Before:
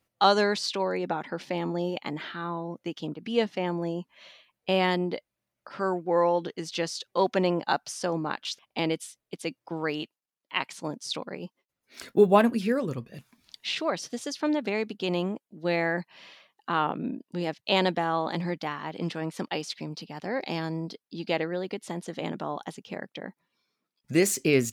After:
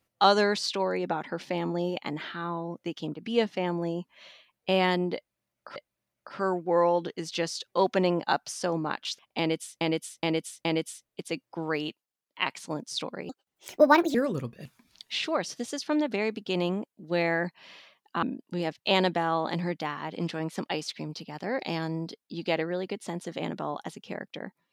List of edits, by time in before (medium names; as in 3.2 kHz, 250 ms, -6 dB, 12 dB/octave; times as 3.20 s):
5.16–5.76 s: loop, 2 plays
8.79–9.21 s: loop, 4 plays
11.43–12.68 s: speed 146%
16.76–17.04 s: delete